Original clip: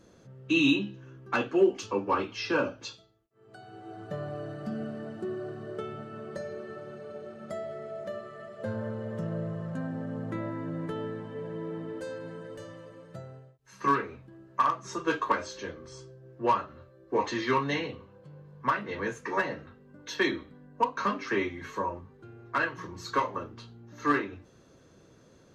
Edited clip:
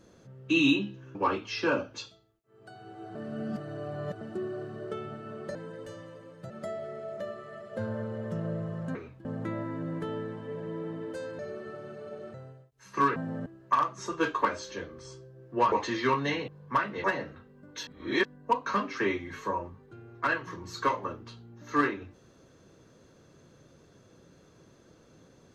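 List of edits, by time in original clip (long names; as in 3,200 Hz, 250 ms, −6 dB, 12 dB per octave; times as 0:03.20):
0:01.15–0:02.02: remove
0:04.02–0:05.08: reverse
0:06.42–0:07.37: swap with 0:12.26–0:13.21
0:09.82–0:10.12: swap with 0:14.03–0:14.33
0:16.59–0:17.16: remove
0:17.92–0:18.41: remove
0:18.97–0:19.35: remove
0:20.18–0:20.56: reverse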